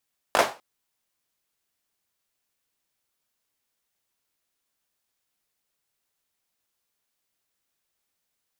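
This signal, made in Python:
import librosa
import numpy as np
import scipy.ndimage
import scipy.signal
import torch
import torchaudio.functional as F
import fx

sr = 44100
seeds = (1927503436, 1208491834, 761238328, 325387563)

y = fx.drum_clap(sr, seeds[0], length_s=0.25, bursts=3, spacing_ms=19, hz=720.0, decay_s=0.3)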